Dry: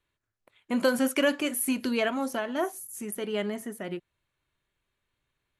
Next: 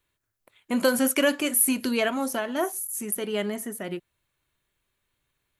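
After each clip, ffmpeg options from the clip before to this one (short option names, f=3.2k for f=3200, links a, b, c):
-af "highshelf=f=8.1k:g=11,volume=2dB"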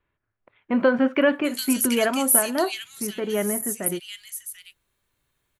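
-filter_complex "[0:a]acrossover=split=2600[a][b];[b]adelay=740[c];[a][c]amix=inputs=2:normalize=0,volume=3.5dB"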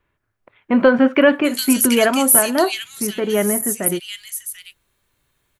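-af "apsyclip=10.5dB,volume=-4dB"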